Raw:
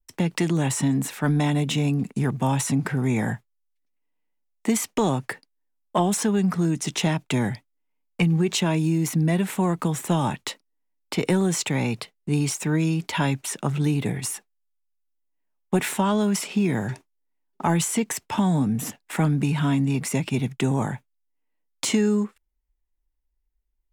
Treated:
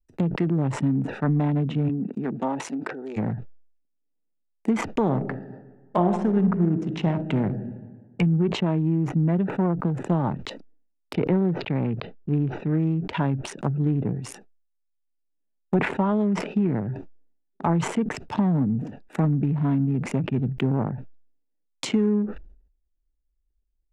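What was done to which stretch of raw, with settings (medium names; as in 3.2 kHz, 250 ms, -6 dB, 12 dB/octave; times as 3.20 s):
1.88–3.16 s: high-pass 160 Hz -> 390 Hz 24 dB/octave
5.01–7.53 s: reverb throw, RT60 1.4 s, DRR 5.5 dB
11.13–12.71 s: low-pass 4.2 kHz 24 dB/octave
whole clip: local Wiener filter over 41 samples; low-pass that closes with the level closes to 1.4 kHz, closed at -22.5 dBFS; decay stretcher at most 87 dB/s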